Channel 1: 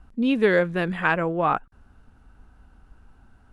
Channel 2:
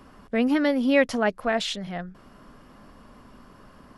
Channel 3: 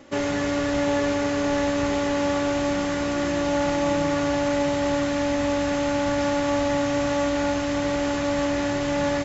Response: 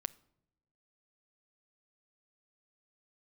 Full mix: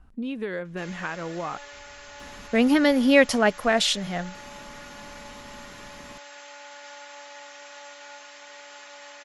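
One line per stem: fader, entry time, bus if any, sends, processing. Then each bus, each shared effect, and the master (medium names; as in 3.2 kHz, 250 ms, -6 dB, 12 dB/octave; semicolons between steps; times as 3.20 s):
-3.5 dB, 0.00 s, no send, compression 4:1, threshold -26 dBFS, peak gain reduction 10.5 dB
+2.5 dB, 2.20 s, no send, treble shelf 4 kHz +9 dB
-12.0 dB, 0.65 s, no send, Bessel high-pass 1.4 kHz, order 2; comb 4.8 ms, depth 53%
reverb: none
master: none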